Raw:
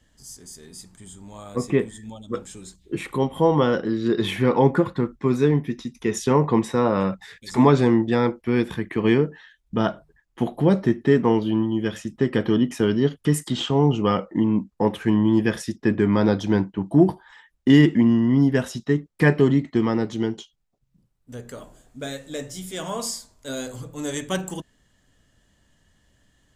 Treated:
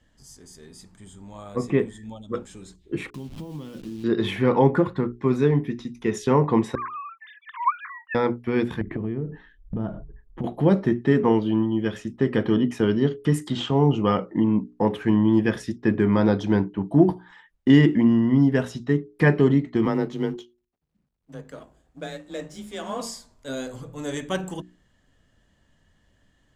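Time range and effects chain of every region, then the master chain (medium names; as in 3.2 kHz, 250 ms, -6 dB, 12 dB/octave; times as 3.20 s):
3.10–4.04 s: send-on-delta sampling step -29.5 dBFS + compression 4:1, threshold -30 dBFS + high-order bell 930 Hz -12.5 dB 2.6 oct
6.75–8.15 s: formants replaced by sine waves + steep high-pass 980 Hz 96 dB/octave
8.81–10.44 s: tilt EQ -4.5 dB/octave + compression 8:1, threshold -24 dBFS
19.85–23.01 s: companding laws mixed up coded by A + frequency shift +24 Hz + treble shelf 10 kHz -4.5 dB
whole clip: treble shelf 5 kHz -10.5 dB; hum notches 60/120/180/240/300/360/420 Hz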